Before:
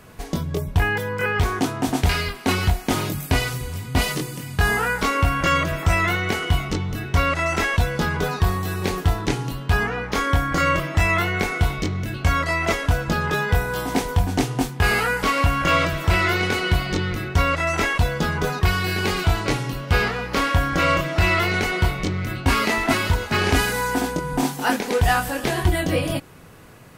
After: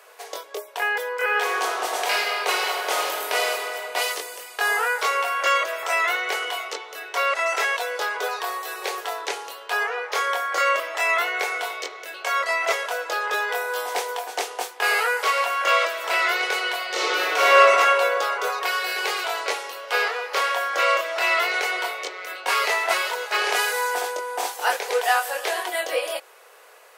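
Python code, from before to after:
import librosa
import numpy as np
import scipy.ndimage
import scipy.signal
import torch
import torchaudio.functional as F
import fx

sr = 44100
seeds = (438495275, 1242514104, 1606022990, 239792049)

y = fx.reverb_throw(x, sr, start_s=1.22, length_s=2.29, rt60_s=2.7, drr_db=-0.5)
y = fx.reverb_throw(y, sr, start_s=16.89, length_s=0.66, rt60_s=3.0, drr_db=-10.0)
y = scipy.signal.sosfilt(scipy.signal.butter(8, 440.0, 'highpass', fs=sr, output='sos'), y)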